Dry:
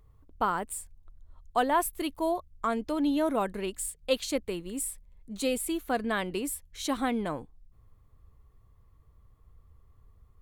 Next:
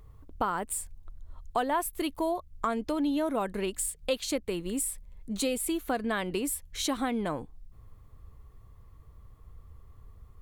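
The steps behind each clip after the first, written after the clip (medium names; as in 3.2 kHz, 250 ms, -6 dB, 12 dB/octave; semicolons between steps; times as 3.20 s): compression 2.5:1, threshold -37 dBFS, peak gain reduction 11 dB; trim +7 dB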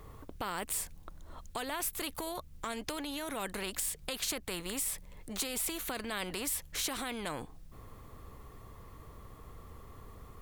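peak limiter -24.5 dBFS, peak gain reduction 9.5 dB; spectrum-flattening compressor 2:1; trim +7.5 dB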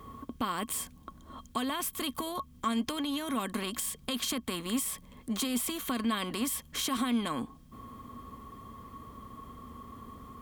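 high-pass 45 Hz; small resonant body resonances 240/1100/3200 Hz, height 16 dB, ringing for 70 ms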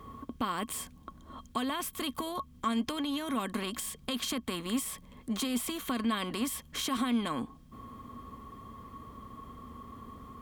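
treble shelf 6.3 kHz -5 dB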